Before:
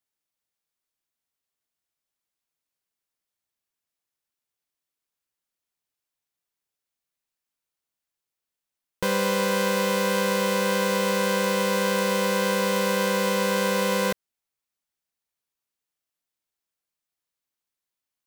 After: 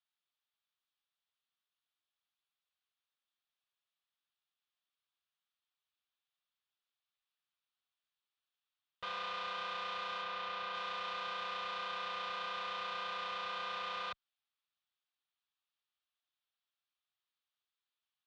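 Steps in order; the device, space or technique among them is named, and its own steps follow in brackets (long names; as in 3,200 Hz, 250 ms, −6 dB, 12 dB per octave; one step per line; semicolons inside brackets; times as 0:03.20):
scooped metal amplifier (tube saturation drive 37 dB, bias 0.55; loudspeaker in its box 100–3,800 Hz, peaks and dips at 210 Hz −8 dB, 360 Hz +6 dB, 730 Hz +4 dB, 1,200 Hz +5 dB, 2,100 Hz −5 dB, 3,500 Hz +4 dB; guitar amp tone stack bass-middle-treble 10-0-10)
0:10.22–0:10.75: high-shelf EQ 7,700 Hz −11 dB
level +5.5 dB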